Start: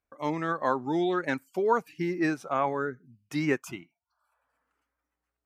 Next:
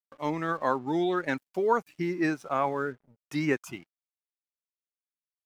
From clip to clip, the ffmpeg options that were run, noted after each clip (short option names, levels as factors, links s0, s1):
-af "aeval=exprs='sgn(val(0))*max(abs(val(0))-0.0015,0)':c=same"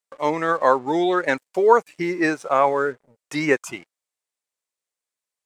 -af "equalizer=f=500:t=o:w=1:g=11,equalizer=f=1000:t=o:w=1:g=6,equalizer=f=2000:t=o:w=1:g=7,equalizer=f=4000:t=o:w=1:g=4,equalizer=f=8000:t=o:w=1:g=12"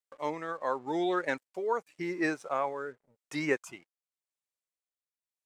-af "tremolo=f=0.89:d=0.56,volume=0.355"